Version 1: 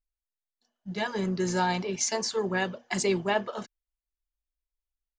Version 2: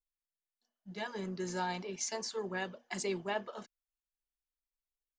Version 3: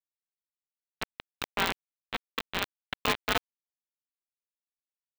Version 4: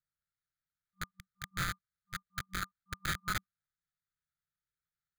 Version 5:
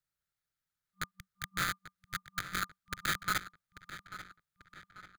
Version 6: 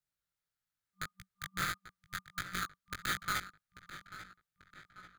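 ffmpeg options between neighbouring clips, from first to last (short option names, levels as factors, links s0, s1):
-af "equalizer=f=85:t=o:w=1:g=-13,volume=0.355"
-af "afreqshift=350,aresample=8000,acrusher=bits=4:mix=0:aa=0.000001,aresample=44100,aeval=exprs='val(0)*sgn(sin(2*PI*300*n/s))':c=same,volume=2.11"
-af "acrusher=samples=16:mix=1:aa=0.000001,afftfilt=real='re*(1-between(b*sr/4096,190,1200))':imag='im*(1-between(b*sr/4096,190,1200))':win_size=4096:overlap=0.75,asoftclip=type=tanh:threshold=0.0355,volume=1.19"
-filter_complex "[0:a]acrossover=split=180|7200[s0][s1][s2];[s0]acompressor=threshold=0.00316:ratio=6[s3];[s3][s1][s2]amix=inputs=3:normalize=0,asplit=2[s4][s5];[s5]adelay=840,lowpass=f=4700:p=1,volume=0.224,asplit=2[s6][s7];[s7]adelay=840,lowpass=f=4700:p=1,volume=0.49,asplit=2[s8][s9];[s9]adelay=840,lowpass=f=4700:p=1,volume=0.49,asplit=2[s10][s11];[s11]adelay=840,lowpass=f=4700:p=1,volume=0.49,asplit=2[s12][s13];[s13]adelay=840,lowpass=f=4700:p=1,volume=0.49[s14];[s4][s6][s8][s10][s12][s14]amix=inputs=6:normalize=0,volume=1.41"
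-af "flanger=delay=16:depth=5.4:speed=1.6,volume=1.12"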